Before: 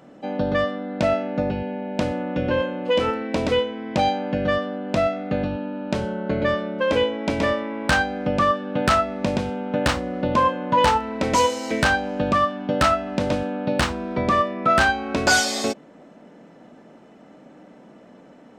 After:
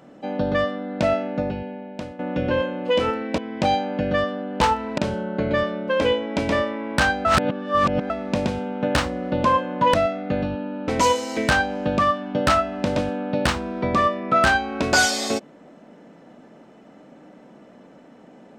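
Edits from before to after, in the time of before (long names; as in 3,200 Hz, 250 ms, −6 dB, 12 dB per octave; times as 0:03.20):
0:01.24–0:02.19: fade out, to −14.5 dB
0:03.38–0:03.72: remove
0:04.95–0:05.89: swap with 0:10.85–0:11.22
0:08.16–0:09.01: reverse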